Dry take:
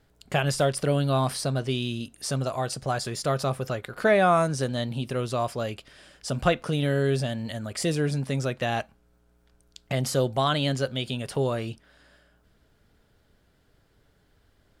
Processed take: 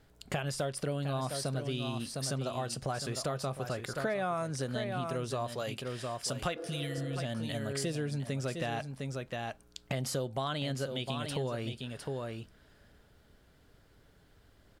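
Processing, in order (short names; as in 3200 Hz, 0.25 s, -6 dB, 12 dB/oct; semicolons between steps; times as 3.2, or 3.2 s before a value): 5.52–6.98 tilt +1.5 dB/oct; echo 0.707 s -10 dB; compressor 4:1, threshold -34 dBFS, peak gain reduction 15.5 dB; 6.59–7.14 spectral repair 280–1700 Hz before; gain +1 dB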